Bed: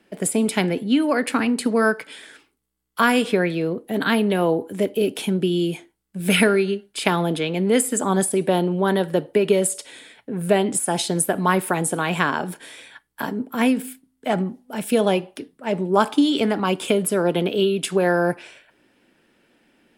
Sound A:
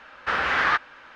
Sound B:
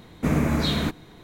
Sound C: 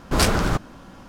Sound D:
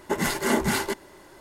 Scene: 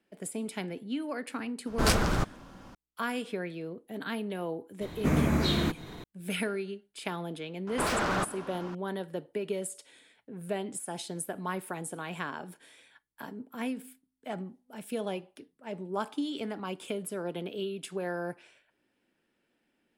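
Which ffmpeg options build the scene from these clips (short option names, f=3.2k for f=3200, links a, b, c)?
-filter_complex "[3:a]asplit=2[a][b];[0:a]volume=-15.5dB[c];[2:a]acompressor=mode=upward:threshold=-30dB:ratio=2.5:attack=3.2:release=140:knee=2.83:detection=peak[d];[b]asplit=2[e][f];[f]highpass=f=720:p=1,volume=29dB,asoftclip=type=tanh:threshold=-2.5dB[g];[e][g]amix=inputs=2:normalize=0,lowpass=f=1.9k:p=1,volume=-6dB[h];[a]atrim=end=1.08,asetpts=PTS-STARTPTS,volume=-6dB,afade=t=in:d=0.004:c=hsin,afade=t=out:st=1.076:d=0.004:c=hsin,adelay=1670[i];[d]atrim=end=1.23,asetpts=PTS-STARTPTS,volume=-3.5dB,afade=t=in:d=0.004:c=hsin,afade=t=out:st=1.226:d=0.004:c=hsin,adelay=212121S[j];[h]atrim=end=1.08,asetpts=PTS-STARTPTS,volume=-17dB,afade=t=in:d=0.004:c=hsin,afade=t=out:st=1.076:d=0.004:c=hsin,adelay=7670[k];[c][i][j][k]amix=inputs=4:normalize=0"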